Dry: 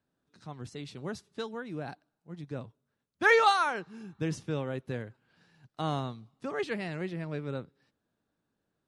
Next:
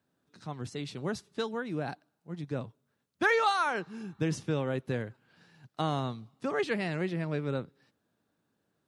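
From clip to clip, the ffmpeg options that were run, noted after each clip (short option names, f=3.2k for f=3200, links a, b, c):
-af "highpass=80,acompressor=threshold=-29dB:ratio=3,volume=4dB"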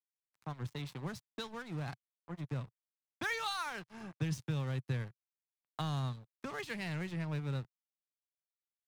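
-filter_complex "[0:a]aeval=exprs='sgn(val(0))*max(abs(val(0))-0.00596,0)':c=same,acrossover=split=150|3000[a][b][c];[b]acompressor=threshold=-45dB:ratio=4[d];[a][d][c]amix=inputs=3:normalize=0,equalizer=f=125:t=o:w=1:g=8,equalizer=f=1k:t=o:w=1:g=7,equalizer=f=2k:t=o:w=1:g=5,volume=-2dB"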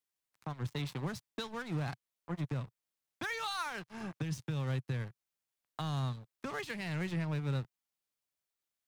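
-af "alimiter=level_in=8.5dB:limit=-24dB:level=0:latency=1:release=377,volume=-8.5dB,volume=5.5dB"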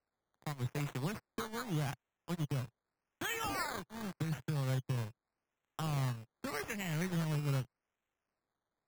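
-af "acrusher=samples=13:mix=1:aa=0.000001:lfo=1:lforange=7.8:lforate=0.84"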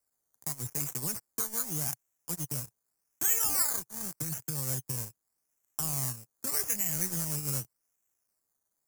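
-af "aexciter=amount=7.5:drive=8.8:freq=5.4k,volume=-3dB"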